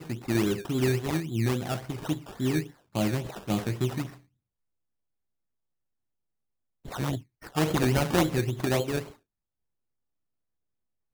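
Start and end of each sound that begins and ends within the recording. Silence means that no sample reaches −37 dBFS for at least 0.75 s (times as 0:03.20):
0:06.85–0:09.08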